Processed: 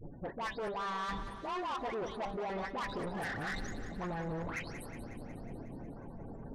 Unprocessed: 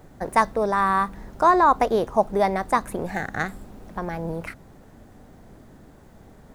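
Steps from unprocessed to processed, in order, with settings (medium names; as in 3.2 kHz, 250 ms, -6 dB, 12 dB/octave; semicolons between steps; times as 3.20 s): delay that grows with frequency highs late, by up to 335 ms; de-hum 198.6 Hz, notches 5; spectral gate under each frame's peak -20 dB strong; reverse; compression 6:1, threshold -35 dBFS, peak gain reduction 20 dB; reverse; saturation -39 dBFS, distortion -9 dB; on a send: thinning echo 182 ms, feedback 68%, high-pass 160 Hz, level -11 dB; on the sum: trim +4.5 dB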